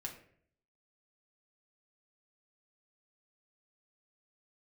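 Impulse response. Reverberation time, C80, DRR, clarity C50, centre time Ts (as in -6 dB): 0.60 s, 12.0 dB, 0.5 dB, 9.0 dB, 19 ms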